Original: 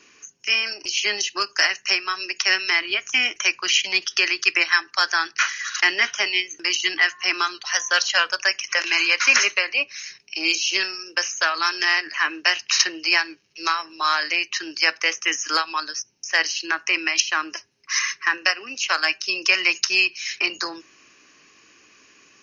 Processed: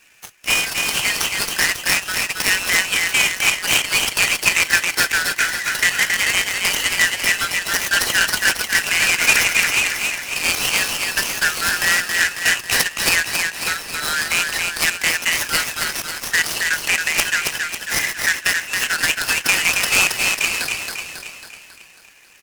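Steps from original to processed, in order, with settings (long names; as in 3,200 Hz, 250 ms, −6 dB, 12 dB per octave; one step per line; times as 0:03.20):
Butterworth high-pass 1,400 Hz 96 dB per octave
in parallel at +1 dB: brickwall limiter −11 dBFS, peak gain reduction 9 dB
on the sum: spectral peaks only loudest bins 64
on a send: repeating echo 273 ms, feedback 54%, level −4 dB
on the sum: short delay modulated by noise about 4,300 Hz, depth 0.036 ms
level −3 dB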